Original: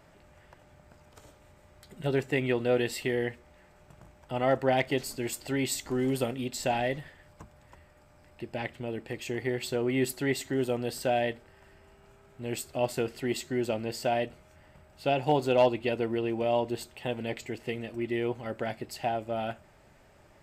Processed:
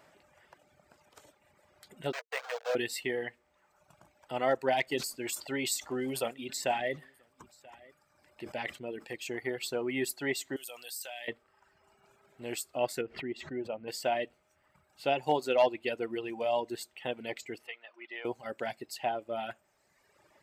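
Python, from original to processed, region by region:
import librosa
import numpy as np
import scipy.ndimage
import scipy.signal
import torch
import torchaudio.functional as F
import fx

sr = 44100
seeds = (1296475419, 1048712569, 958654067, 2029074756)

y = fx.chain(x, sr, fx.delta_hold(step_db=-26.0),
    fx.cheby_ripple_highpass(hz=450.0, ripple_db=3),
    fx.resample_linear(factor=4), at=(2.12, 2.75))
y = fx.chain(y, sr, fx.echo_single(ms=983, db=-23.5),
    fx.sustainer(db_per_s=110.0), at=(4.85, 9.16))
y = fx.chain(y, sr, fx.pre_emphasis(coefficient=0.97),
    fx.env_flatten(amount_pct=70), at=(10.56, 11.28))
y = fx.chain(y, sr, fx.curve_eq(hz=(150.0, 2400.0, 7300.0, 11000.0), db=(0, -8, -25, -28)),
    fx.pre_swell(db_per_s=77.0), at=(13.01, 13.88))
y = fx.chain(y, sr, fx.highpass(hz=870.0, slope=12),
    fx.air_absorb(metres=150.0), at=(17.67, 18.25))
y = fx.dereverb_blind(y, sr, rt60_s=1.3)
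y = fx.highpass(y, sr, hz=410.0, slope=6)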